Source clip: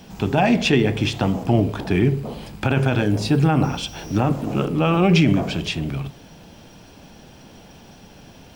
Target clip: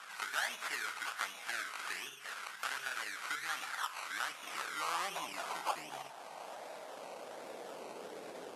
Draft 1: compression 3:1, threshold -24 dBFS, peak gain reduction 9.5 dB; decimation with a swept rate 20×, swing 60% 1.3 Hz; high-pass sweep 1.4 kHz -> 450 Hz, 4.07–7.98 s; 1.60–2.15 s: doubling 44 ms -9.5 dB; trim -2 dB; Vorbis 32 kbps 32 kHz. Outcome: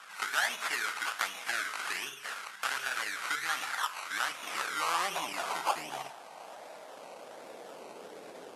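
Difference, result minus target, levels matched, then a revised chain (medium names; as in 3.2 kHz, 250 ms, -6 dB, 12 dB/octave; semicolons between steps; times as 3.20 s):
compression: peak gain reduction -6 dB
compression 3:1, threshold -33 dBFS, peak gain reduction 15.5 dB; decimation with a swept rate 20×, swing 60% 1.3 Hz; high-pass sweep 1.4 kHz -> 450 Hz, 4.07–7.98 s; 1.60–2.15 s: doubling 44 ms -9.5 dB; trim -2 dB; Vorbis 32 kbps 32 kHz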